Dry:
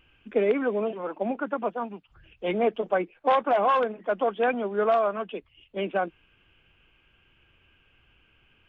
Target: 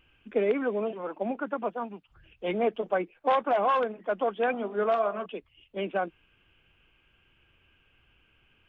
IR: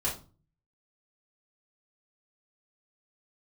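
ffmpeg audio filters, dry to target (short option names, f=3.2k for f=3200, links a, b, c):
-filter_complex "[0:a]asettb=1/sr,asplit=3[a][b][c];[a]atrim=end=4.464[d];[b]atrim=start=4.46:end=5.26,asetpts=PTS-STARTPTS,afade=t=in:d=0.004:c=qsin,afade=t=out:st=0.796:d=0.004:c=qsin,bandreject=f=49.3:t=h:w=4,bandreject=f=98.6:t=h:w=4,bandreject=f=147.9:t=h:w=4,bandreject=f=197.2:t=h:w=4,bandreject=f=246.5:t=h:w=4,bandreject=f=295.8:t=h:w=4,bandreject=f=345.1:t=h:w=4,bandreject=f=394.4:t=h:w=4,bandreject=f=443.7:t=h:w=4,bandreject=f=493:t=h:w=4,bandreject=f=542.3:t=h:w=4,bandreject=f=591.6:t=h:w=4,bandreject=f=640.9:t=h:w=4,bandreject=f=690.2:t=h:w=4,bandreject=f=739.5:t=h:w=4,bandreject=f=788.8:t=h:w=4,bandreject=f=838.1:t=h:w=4,bandreject=f=887.4:t=h:w=4,bandreject=f=936.7:t=h:w=4,bandreject=f=986:t=h:w=4,bandreject=f=1.0353k:t=h:w=4,bandreject=f=1.0846k:t=h:w=4,bandreject=f=1.1339k:t=h:w=4,bandreject=f=1.1832k:t=h:w=4,bandreject=f=1.2325k:t=h:w=4,bandreject=f=1.2818k:t=h:w=4,bandreject=f=1.3311k:t=h:w=4[e];[c]atrim=start=5.256[f];[d][e]acrossfade=d=0.004:c1=hsin:c2=qsin[g];[g][f]acrossfade=d=0.004:c1=qsin:c2=hsin,volume=-2.5dB"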